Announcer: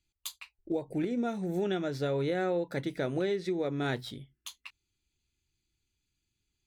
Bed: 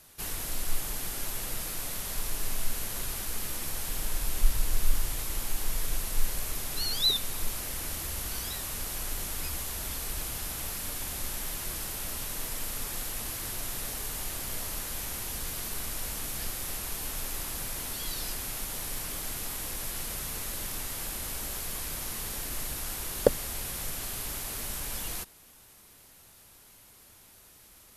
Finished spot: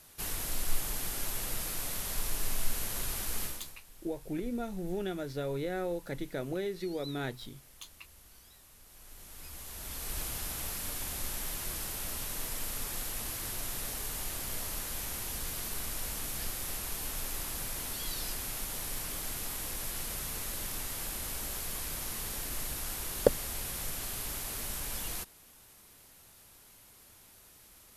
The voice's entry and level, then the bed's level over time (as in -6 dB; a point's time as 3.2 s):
3.35 s, -4.5 dB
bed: 3.44 s -1 dB
3.83 s -22 dB
8.82 s -22 dB
10.17 s -2 dB